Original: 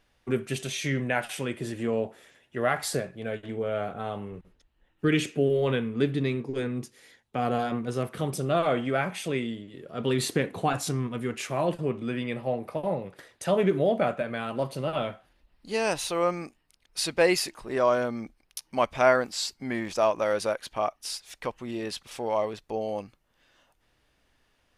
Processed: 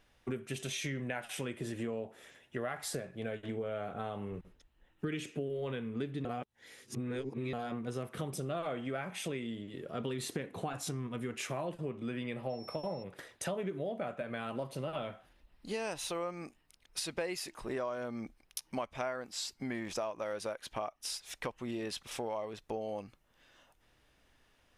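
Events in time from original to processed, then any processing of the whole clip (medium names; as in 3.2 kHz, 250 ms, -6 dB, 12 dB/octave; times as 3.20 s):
6.25–7.53 s: reverse
12.49–13.02 s: whistle 5.4 kHz -45 dBFS
whole clip: compression 6:1, threshold -35 dBFS; band-stop 4.5 kHz, Q 17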